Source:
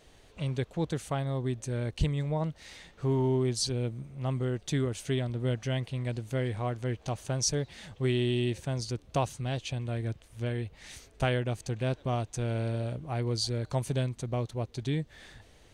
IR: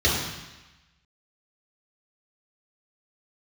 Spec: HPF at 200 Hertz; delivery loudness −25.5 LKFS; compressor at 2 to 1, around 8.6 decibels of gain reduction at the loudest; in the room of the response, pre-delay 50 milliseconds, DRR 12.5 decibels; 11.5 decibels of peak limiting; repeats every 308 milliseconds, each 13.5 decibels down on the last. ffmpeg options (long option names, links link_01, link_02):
-filter_complex "[0:a]highpass=200,acompressor=threshold=-41dB:ratio=2,alimiter=level_in=9dB:limit=-24dB:level=0:latency=1,volume=-9dB,aecho=1:1:308|616:0.211|0.0444,asplit=2[link_01][link_02];[1:a]atrim=start_sample=2205,adelay=50[link_03];[link_02][link_03]afir=irnorm=-1:irlink=0,volume=-29dB[link_04];[link_01][link_04]amix=inputs=2:normalize=0,volume=19dB"